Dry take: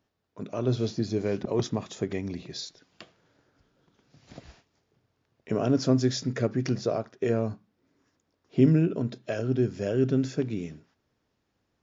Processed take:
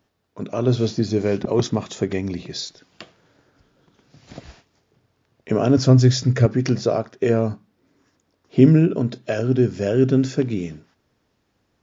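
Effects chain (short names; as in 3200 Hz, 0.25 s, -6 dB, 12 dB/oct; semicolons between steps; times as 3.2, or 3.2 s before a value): 5.77–6.46 resonant low shelf 150 Hz +7.5 dB, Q 1.5; gain +7.5 dB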